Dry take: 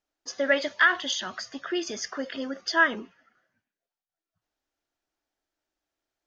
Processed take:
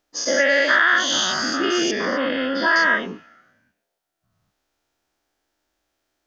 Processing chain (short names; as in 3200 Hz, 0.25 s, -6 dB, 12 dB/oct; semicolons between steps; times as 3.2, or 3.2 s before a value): spectral dilation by 0.24 s; 1.91–2.76 LPF 3400 Hz 24 dB/oct; compressor 2.5:1, threshold -23 dBFS, peak gain reduction 9.5 dB; gain +5.5 dB